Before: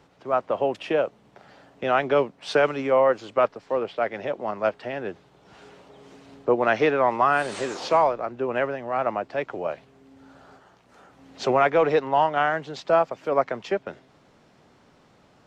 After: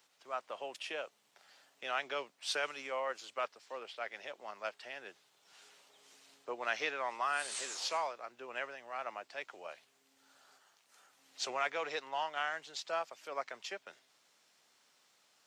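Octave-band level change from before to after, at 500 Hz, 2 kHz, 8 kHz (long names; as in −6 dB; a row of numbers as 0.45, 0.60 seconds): −20.0, −10.0, +1.5 decibels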